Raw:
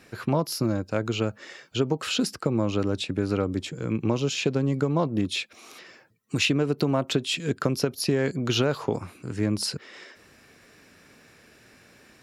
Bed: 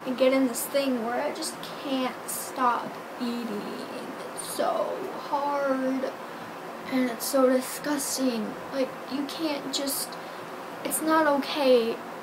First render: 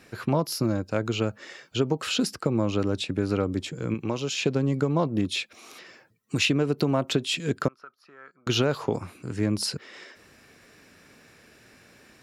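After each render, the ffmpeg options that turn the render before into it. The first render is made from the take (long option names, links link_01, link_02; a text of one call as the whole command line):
ffmpeg -i in.wav -filter_complex "[0:a]asettb=1/sr,asplit=3[link_01][link_02][link_03];[link_01]atrim=end=3.944[link_04];[link_02]atrim=start=3.94:end=4.39,asetpts=PTS-STARTPTS,afade=type=in:duration=0.004:curve=qsin,afade=type=out:start_time=0.446:duration=0.004:curve=qsin,lowshelf=frequency=460:gain=-6.5[link_05];[link_03]atrim=start=4.386[link_06];[link_04][link_05]acrossfade=duration=0.004:curve1=hsin:curve2=qsin[link_07];[link_07][link_06]acrossfade=duration=0.004:curve1=qsin:curve2=hsin,asettb=1/sr,asplit=3[link_08][link_09][link_10];[link_08]atrim=end=7.684[link_11];[link_09]atrim=start=7.68:end=8.47,asetpts=PTS-STARTPTS,afade=type=in:duration=0.004:curve=qsin,afade=type=out:start_time=0.786:duration=0.004:curve=qsin,bandpass=frequency=1300:width_type=q:width=10[link_12];[link_10]atrim=start=8.466[link_13];[link_11][link_12]acrossfade=duration=0.004:curve1=hsin:curve2=qsin[link_14];[link_14][link_13]acrossfade=duration=0.004:curve1=qsin:curve2=hsin" out.wav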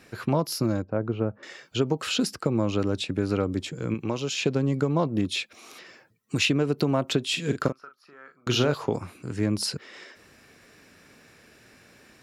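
ffmpeg -i in.wav -filter_complex "[0:a]asettb=1/sr,asplit=3[link_01][link_02][link_03];[link_01]atrim=end=0.824[link_04];[link_02]atrim=start=0.82:end=1.43,asetpts=PTS-STARTPTS,afade=type=in:duration=0.004:curve=qsin,afade=type=out:start_time=0.606:duration=0.004:curve=qsin,lowpass=1100[link_05];[link_03]atrim=start=1.426[link_06];[link_04][link_05]acrossfade=duration=0.004:curve1=hsin:curve2=qsin[link_07];[link_07][link_06]acrossfade=duration=0.004:curve1=qsin:curve2=hsin,asettb=1/sr,asplit=3[link_08][link_09][link_10];[link_08]atrim=end=7.274[link_11];[link_09]atrim=start=7.27:end=8.74,asetpts=PTS-STARTPTS,afade=type=in:duration=0.004:curve=qsin,afade=type=out:start_time=1.466:duration=0.004:curve=qsin,asplit=2[link_12][link_13];[link_13]adelay=41,volume=-8.5dB[link_14];[link_12][link_14]amix=inputs=2:normalize=0,atrim=end_sample=64827[link_15];[link_10]atrim=start=8.736[link_16];[link_11][link_15]acrossfade=duration=0.004:curve1=hsin:curve2=qsin[link_17];[link_17][link_16]acrossfade=duration=0.004:curve1=qsin:curve2=hsin" out.wav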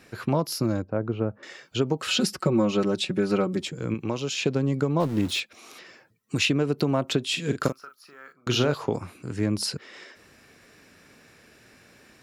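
ffmpeg -i in.wav -filter_complex "[0:a]asettb=1/sr,asplit=3[link_01][link_02][link_03];[link_01]atrim=end=2.084[link_04];[link_02]atrim=start=2.08:end=3.68,asetpts=PTS-STARTPTS,afade=type=in:duration=0.004:curve=qsin,afade=type=out:start_time=1.596:duration=0.004:curve=qsin,aecho=1:1:5.4:0.98,atrim=end_sample=70560[link_05];[link_03]atrim=start=3.676[link_06];[link_04][link_05]acrossfade=duration=0.004:curve1=hsin:curve2=qsin[link_07];[link_07][link_06]acrossfade=duration=0.004:curve1=qsin:curve2=hsin,asettb=1/sr,asplit=3[link_08][link_09][link_10];[link_08]atrim=end=5.004[link_11];[link_09]atrim=start=5:end=5.4,asetpts=PTS-STARTPTS,afade=type=in:duration=0.004:curve=qsin,afade=type=out:start_time=0.396:duration=0.004:curve=qsin,aeval=exprs='val(0)+0.5*0.0188*sgn(val(0))':channel_layout=same[link_12];[link_10]atrim=start=5.396[link_13];[link_11][link_12]acrossfade=duration=0.004:curve1=hsin:curve2=qsin[link_14];[link_14][link_13]acrossfade=duration=0.004:curve1=qsin:curve2=hsin,asettb=1/sr,asplit=3[link_15][link_16][link_17];[link_15]atrim=end=7.634[link_18];[link_16]atrim=start=7.63:end=8.33,asetpts=PTS-STARTPTS,afade=type=in:duration=0.004:curve=qsin,afade=type=out:start_time=0.696:duration=0.004:curve=qsin,aemphasis=mode=production:type=75kf[link_19];[link_17]atrim=start=8.326[link_20];[link_18][link_19]acrossfade=duration=0.004:curve1=hsin:curve2=qsin[link_21];[link_21][link_20]acrossfade=duration=0.004:curve1=qsin:curve2=hsin" out.wav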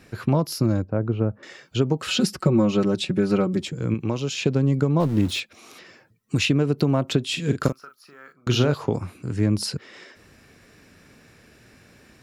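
ffmpeg -i in.wav -af "lowshelf=frequency=200:gain=9" out.wav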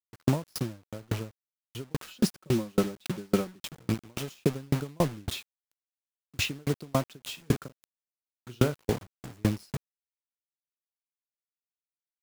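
ffmpeg -i in.wav -af "acrusher=bits=4:mix=0:aa=0.000001,aeval=exprs='val(0)*pow(10,-38*if(lt(mod(3.6*n/s,1),2*abs(3.6)/1000),1-mod(3.6*n/s,1)/(2*abs(3.6)/1000),(mod(3.6*n/s,1)-2*abs(3.6)/1000)/(1-2*abs(3.6)/1000))/20)':channel_layout=same" out.wav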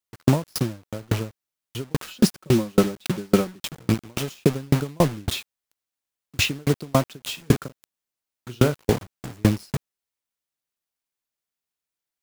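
ffmpeg -i in.wav -af "volume=7.5dB,alimiter=limit=-3dB:level=0:latency=1" out.wav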